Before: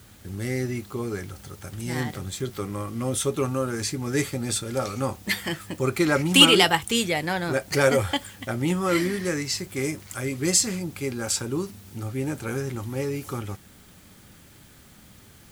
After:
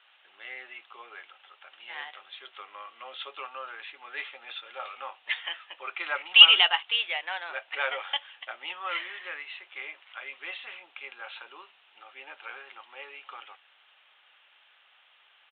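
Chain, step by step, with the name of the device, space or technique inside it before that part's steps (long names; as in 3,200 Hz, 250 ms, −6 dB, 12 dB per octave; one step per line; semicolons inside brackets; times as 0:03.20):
musical greeting card (downsampling to 8,000 Hz; high-pass filter 740 Hz 24 dB per octave; parametric band 2,800 Hz +9 dB 0.37 octaves)
level −5 dB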